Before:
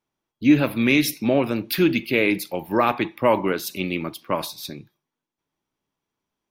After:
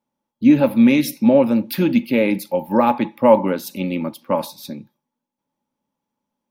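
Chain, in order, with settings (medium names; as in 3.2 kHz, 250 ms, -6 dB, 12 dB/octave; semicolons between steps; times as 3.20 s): treble shelf 5.7 kHz +5 dB; small resonant body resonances 230/540/850 Hz, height 16 dB, ringing for 40 ms; trim -5.5 dB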